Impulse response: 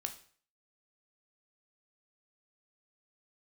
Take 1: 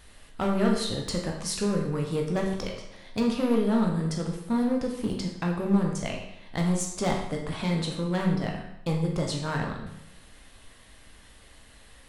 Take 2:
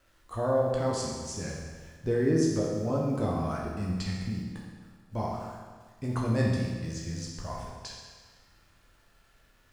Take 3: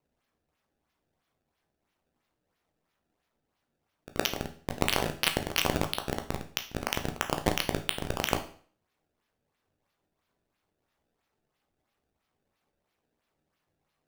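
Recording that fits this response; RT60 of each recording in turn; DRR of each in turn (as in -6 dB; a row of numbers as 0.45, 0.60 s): 3; 0.80, 1.5, 0.50 s; 0.0, -3.5, 5.5 dB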